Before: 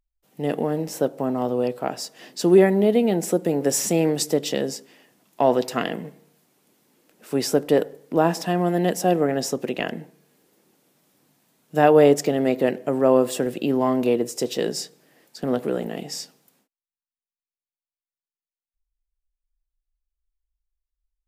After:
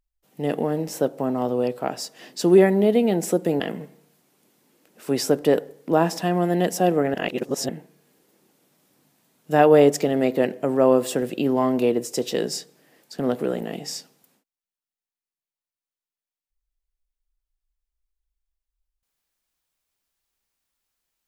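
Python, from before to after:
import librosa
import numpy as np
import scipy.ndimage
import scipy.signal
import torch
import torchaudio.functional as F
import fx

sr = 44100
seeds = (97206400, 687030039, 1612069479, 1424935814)

y = fx.edit(x, sr, fx.cut(start_s=3.6, length_s=2.24),
    fx.reverse_span(start_s=9.38, length_s=0.55), tone=tone)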